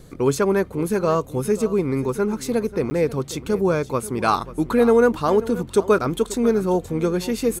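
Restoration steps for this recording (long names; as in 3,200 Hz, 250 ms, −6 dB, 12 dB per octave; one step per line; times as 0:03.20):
repair the gap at 0:02.90, 10 ms
echo removal 537 ms −16.5 dB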